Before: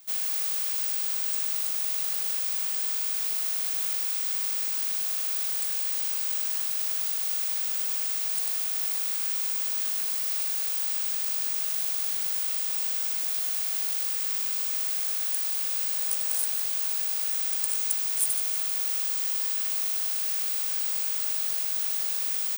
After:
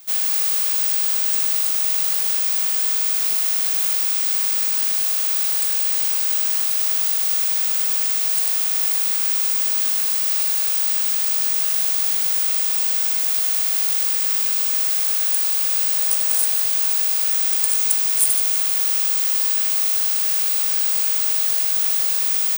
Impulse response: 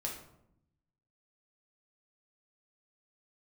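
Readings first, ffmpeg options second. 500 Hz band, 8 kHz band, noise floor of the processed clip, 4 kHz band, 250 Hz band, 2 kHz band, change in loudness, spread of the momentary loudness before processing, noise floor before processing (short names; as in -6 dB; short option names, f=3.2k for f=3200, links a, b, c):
+9.0 dB, +8.5 dB, -20 dBFS, +8.5 dB, n/a, +8.5 dB, +8.5 dB, 1 LU, -29 dBFS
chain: -filter_complex "[0:a]asplit=2[a][b];[1:a]atrim=start_sample=2205[c];[b][c]afir=irnorm=-1:irlink=0,volume=-3.5dB[d];[a][d]amix=inputs=2:normalize=0,volume=4.5dB"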